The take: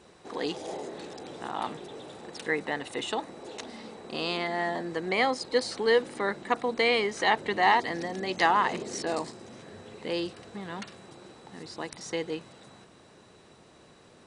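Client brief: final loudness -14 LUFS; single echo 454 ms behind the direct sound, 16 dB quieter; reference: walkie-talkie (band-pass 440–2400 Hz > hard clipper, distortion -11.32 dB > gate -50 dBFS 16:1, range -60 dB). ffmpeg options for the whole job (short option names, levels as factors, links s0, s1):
-af "highpass=440,lowpass=2400,aecho=1:1:454:0.158,asoftclip=type=hard:threshold=0.0794,agate=range=0.001:threshold=0.00316:ratio=16,volume=8.41"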